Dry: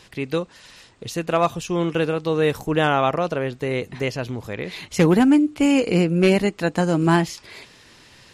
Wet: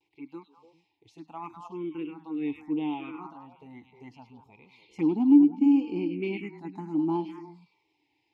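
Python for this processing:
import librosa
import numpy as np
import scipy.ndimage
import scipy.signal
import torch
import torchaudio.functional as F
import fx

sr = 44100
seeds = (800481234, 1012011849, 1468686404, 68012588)

y = fx.noise_reduce_blind(x, sr, reduce_db=6)
y = fx.vowel_filter(y, sr, vowel='u')
y = fx.echo_stepped(y, sr, ms=101, hz=3400.0, octaves=-1.4, feedback_pct=70, wet_db=-2.0)
y = fx.env_phaser(y, sr, low_hz=220.0, high_hz=2000.0, full_db=-24.0)
y = fx.vibrato(y, sr, rate_hz=0.7, depth_cents=49.0)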